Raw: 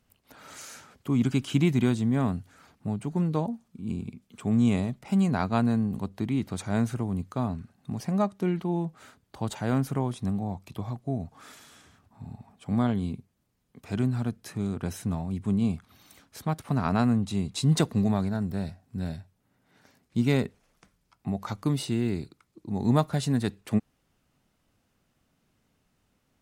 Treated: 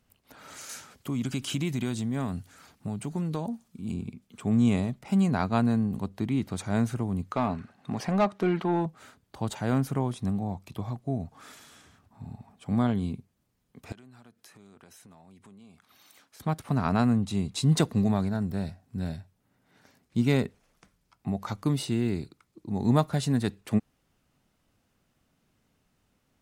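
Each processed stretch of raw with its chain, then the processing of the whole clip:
0:00.69–0:03.94: high-shelf EQ 3,000 Hz +7.5 dB + downward compressor 2.5 to 1, threshold −28 dBFS
0:07.31–0:08.86: high-shelf EQ 4,300 Hz −8 dB + mid-hump overdrive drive 17 dB, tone 4,200 Hz, clips at −14.5 dBFS
0:13.92–0:16.40: high-pass filter 620 Hz 6 dB per octave + downward compressor 5 to 1, threshold −51 dBFS
whole clip: no processing

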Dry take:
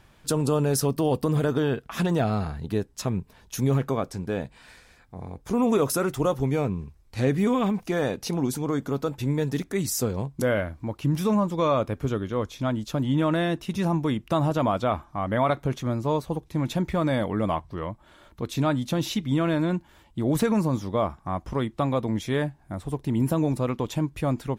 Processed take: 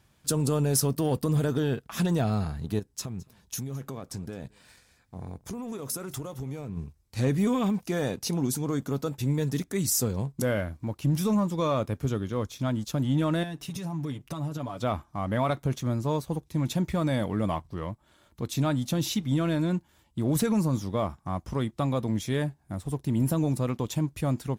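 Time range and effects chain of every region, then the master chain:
0:02.79–0:06.77: downward compressor, threshold −31 dBFS + single-tap delay 215 ms −21.5 dB
0:13.43–0:14.82: downward compressor, threshold −31 dBFS + comb filter 7 ms, depth 70% + one half of a high-frequency compander decoder only
whole clip: high-pass filter 58 Hz 12 dB per octave; bass and treble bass +5 dB, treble +8 dB; leveller curve on the samples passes 1; level −8 dB

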